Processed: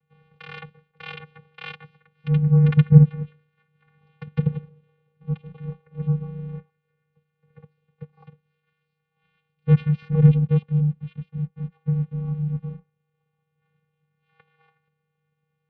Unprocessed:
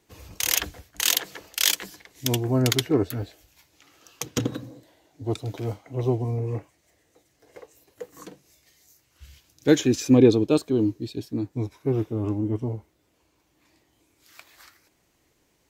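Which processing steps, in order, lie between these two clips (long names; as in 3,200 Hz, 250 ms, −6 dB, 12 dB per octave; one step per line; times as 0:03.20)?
dynamic equaliser 370 Hz, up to +5 dB, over −32 dBFS, Q 0.86
0:02.26–0:04.65: hollow resonant body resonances 400/2,000 Hz, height 12 dB, ringing for 30 ms
in parallel at −10.5 dB: bit reduction 6 bits
on the sum: channel vocoder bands 8, square 163 Hz
single-sideband voice off tune −340 Hz 330–3,600 Hz
level +1 dB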